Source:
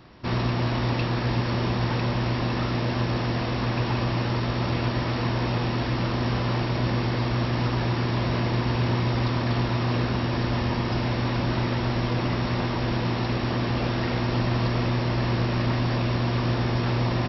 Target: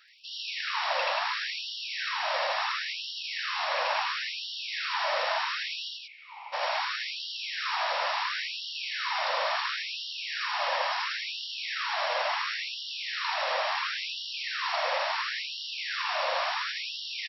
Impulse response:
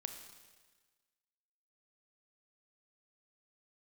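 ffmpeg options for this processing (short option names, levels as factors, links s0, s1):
-filter_complex "[0:a]asplit=3[s0][s1][s2];[s0]afade=t=out:st=5.88:d=0.02[s3];[s1]asplit=3[s4][s5][s6];[s4]bandpass=f=300:t=q:w=8,volume=1[s7];[s5]bandpass=f=870:t=q:w=8,volume=0.501[s8];[s6]bandpass=f=2240:t=q:w=8,volume=0.355[s9];[s7][s8][s9]amix=inputs=3:normalize=0,afade=t=in:st=5.88:d=0.02,afade=t=out:st=6.52:d=0.02[s10];[s2]afade=t=in:st=6.52:d=0.02[s11];[s3][s10][s11]amix=inputs=3:normalize=0,aecho=1:1:81.63|183.7:1|0.631,afftfilt=real='re*gte(b*sr/1024,490*pow(2800/490,0.5+0.5*sin(2*PI*0.72*pts/sr)))':imag='im*gte(b*sr/1024,490*pow(2800/490,0.5+0.5*sin(2*PI*0.72*pts/sr)))':win_size=1024:overlap=0.75"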